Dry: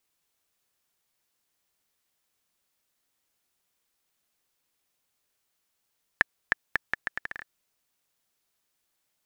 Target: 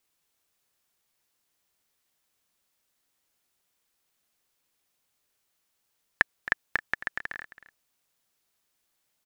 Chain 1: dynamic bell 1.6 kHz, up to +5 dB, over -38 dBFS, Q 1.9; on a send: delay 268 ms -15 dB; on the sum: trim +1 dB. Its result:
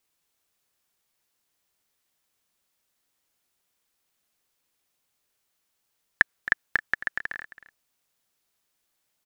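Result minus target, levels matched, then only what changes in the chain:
500 Hz band -4.0 dB
change: dynamic bell 450 Hz, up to +5 dB, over -38 dBFS, Q 1.9

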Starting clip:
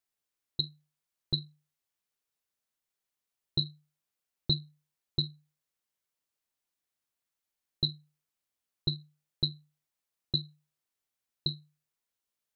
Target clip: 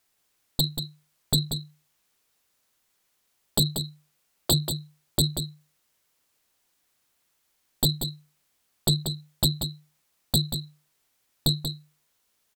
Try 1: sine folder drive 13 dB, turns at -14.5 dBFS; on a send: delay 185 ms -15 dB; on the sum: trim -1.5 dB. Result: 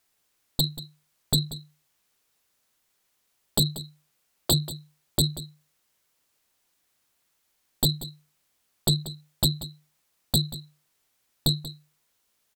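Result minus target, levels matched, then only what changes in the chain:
echo-to-direct -7 dB
change: delay 185 ms -8 dB

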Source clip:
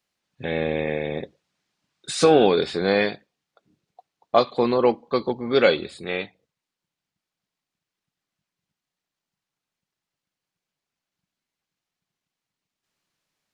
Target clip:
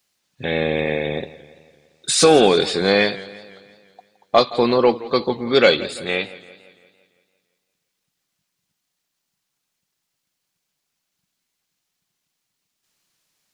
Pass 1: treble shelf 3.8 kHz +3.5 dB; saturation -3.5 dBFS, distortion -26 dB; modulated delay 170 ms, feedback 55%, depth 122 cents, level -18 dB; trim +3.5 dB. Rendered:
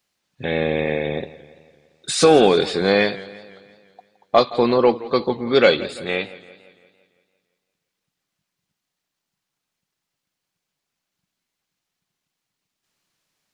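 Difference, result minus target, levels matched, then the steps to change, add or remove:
8 kHz band -5.0 dB
change: treble shelf 3.8 kHz +10.5 dB

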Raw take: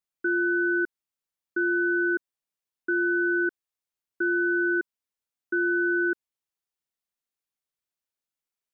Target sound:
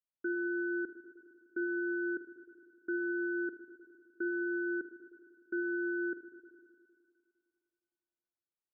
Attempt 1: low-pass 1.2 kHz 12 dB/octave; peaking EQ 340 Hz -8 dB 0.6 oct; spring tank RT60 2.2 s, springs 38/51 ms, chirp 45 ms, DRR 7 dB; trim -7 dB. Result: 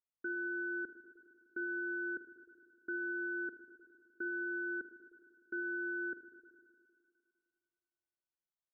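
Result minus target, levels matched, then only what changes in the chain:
250 Hz band -4.5 dB
remove: peaking EQ 340 Hz -8 dB 0.6 oct

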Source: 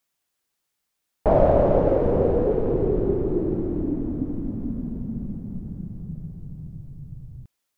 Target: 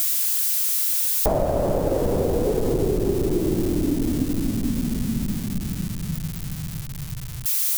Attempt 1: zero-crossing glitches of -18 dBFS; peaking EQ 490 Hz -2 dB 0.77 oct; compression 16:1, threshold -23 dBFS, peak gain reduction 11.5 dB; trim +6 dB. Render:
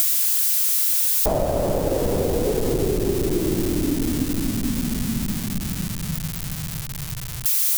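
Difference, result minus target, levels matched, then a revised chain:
zero-crossing glitches: distortion +6 dB
zero-crossing glitches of -24 dBFS; peaking EQ 490 Hz -2 dB 0.77 oct; compression 16:1, threshold -23 dBFS, peak gain reduction 11.5 dB; trim +6 dB

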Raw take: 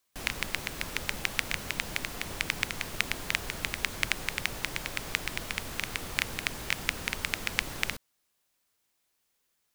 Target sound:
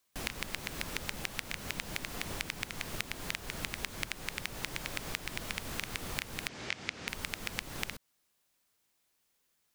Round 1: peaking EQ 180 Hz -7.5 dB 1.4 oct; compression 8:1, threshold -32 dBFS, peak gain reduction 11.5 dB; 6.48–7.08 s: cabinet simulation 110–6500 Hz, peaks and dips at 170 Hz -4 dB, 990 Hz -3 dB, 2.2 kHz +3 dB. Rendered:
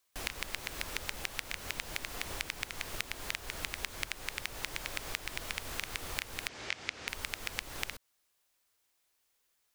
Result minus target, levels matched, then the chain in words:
250 Hz band -6.0 dB
peaking EQ 180 Hz +2 dB 1.4 oct; compression 8:1, threshold -32 dBFS, peak gain reduction 12 dB; 6.48–7.08 s: cabinet simulation 110–6500 Hz, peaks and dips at 170 Hz -4 dB, 990 Hz -3 dB, 2.2 kHz +3 dB

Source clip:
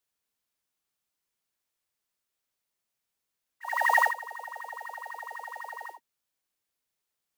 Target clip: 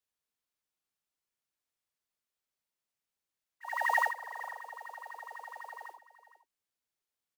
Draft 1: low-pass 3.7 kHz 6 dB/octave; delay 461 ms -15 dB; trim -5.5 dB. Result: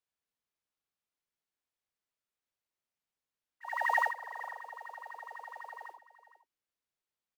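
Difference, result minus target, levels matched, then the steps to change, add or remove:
8 kHz band -5.0 dB
change: low-pass 11 kHz 6 dB/octave

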